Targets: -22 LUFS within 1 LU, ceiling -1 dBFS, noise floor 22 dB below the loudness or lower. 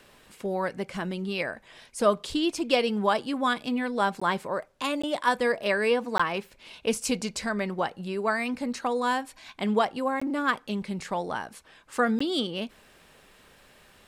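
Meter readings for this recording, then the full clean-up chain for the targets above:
dropouts 5; longest dropout 15 ms; loudness -28.0 LUFS; peak level -9.5 dBFS; loudness target -22.0 LUFS
-> interpolate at 4.20/5.02/6.18/10.20/12.19 s, 15 ms; trim +6 dB

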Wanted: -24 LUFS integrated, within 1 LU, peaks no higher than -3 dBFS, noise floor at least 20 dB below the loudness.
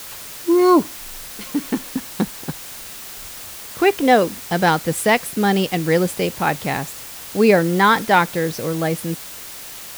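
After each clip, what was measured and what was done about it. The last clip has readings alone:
noise floor -35 dBFS; noise floor target -39 dBFS; loudness -18.5 LUFS; peak level -1.5 dBFS; loudness target -24.0 LUFS
-> noise print and reduce 6 dB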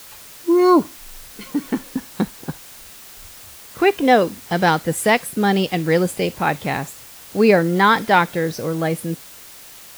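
noise floor -41 dBFS; loudness -18.5 LUFS; peak level -1.5 dBFS; loudness target -24.0 LUFS
-> trim -5.5 dB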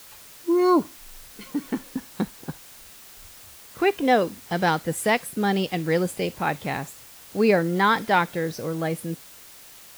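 loudness -24.0 LUFS; peak level -7.0 dBFS; noise floor -47 dBFS

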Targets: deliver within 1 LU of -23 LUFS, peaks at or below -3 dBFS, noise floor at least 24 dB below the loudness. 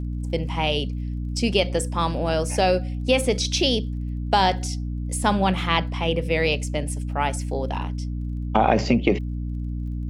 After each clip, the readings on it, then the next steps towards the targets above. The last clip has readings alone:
tick rate 23 per s; hum 60 Hz; highest harmonic 300 Hz; hum level -26 dBFS; loudness -23.5 LUFS; peak level -4.0 dBFS; loudness target -23.0 LUFS
-> de-click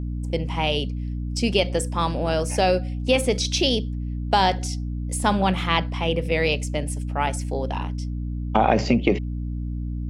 tick rate 0 per s; hum 60 Hz; highest harmonic 300 Hz; hum level -26 dBFS
-> hum notches 60/120/180/240/300 Hz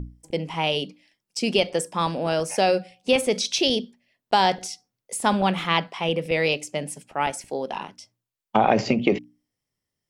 hum not found; loudness -24.0 LUFS; peak level -5.0 dBFS; loudness target -23.0 LUFS
-> trim +1 dB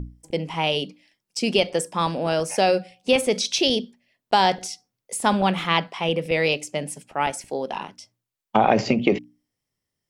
loudness -23.0 LUFS; peak level -4.0 dBFS; noise floor -84 dBFS

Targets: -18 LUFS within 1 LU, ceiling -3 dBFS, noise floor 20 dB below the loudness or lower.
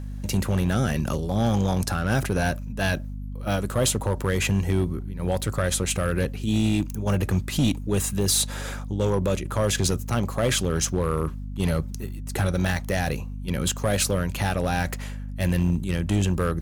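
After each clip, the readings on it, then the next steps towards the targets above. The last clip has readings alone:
clipped samples 1.7%; clipping level -15.5 dBFS; hum 50 Hz; highest harmonic 250 Hz; hum level -30 dBFS; loudness -25.0 LUFS; peak level -15.5 dBFS; loudness target -18.0 LUFS
-> clip repair -15.5 dBFS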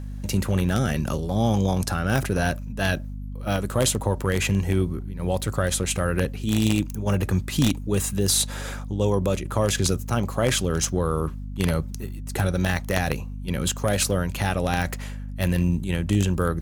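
clipped samples 0.0%; hum 50 Hz; highest harmonic 250 Hz; hum level -30 dBFS
-> hum notches 50/100/150/200/250 Hz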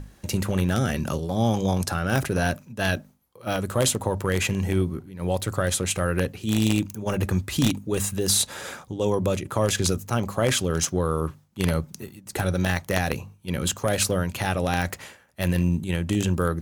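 hum not found; loudness -25.0 LUFS; peak level -6.0 dBFS; loudness target -18.0 LUFS
-> trim +7 dB; peak limiter -3 dBFS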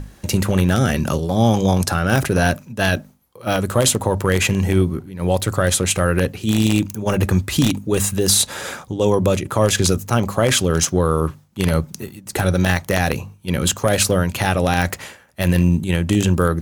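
loudness -18.5 LUFS; peak level -3.0 dBFS; noise floor -48 dBFS

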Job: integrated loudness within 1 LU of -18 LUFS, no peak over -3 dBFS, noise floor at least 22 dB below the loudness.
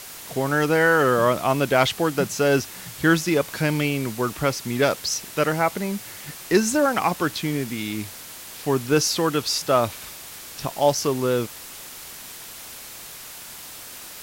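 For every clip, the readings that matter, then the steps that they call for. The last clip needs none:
noise floor -40 dBFS; noise floor target -45 dBFS; loudness -22.5 LUFS; peak level -5.5 dBFS; loudness target -18.0 LUFS
-> noise reduction 6 dB, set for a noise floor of -40 dBFS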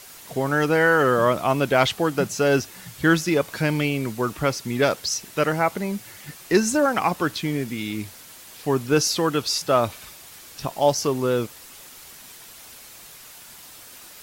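noise floor -45 dBFS; loudness -22.5 LUFS; peak level -5.5 dBFS; loudness target -18.0 LUFS
-> trim +4.5 dB; peak limiter -3 dBFS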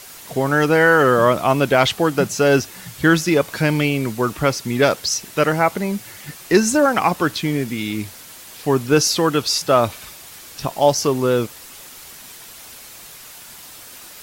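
loudness -18.0 LUFS; peak level -3.0 dBFS; noise floor -40 dBFS

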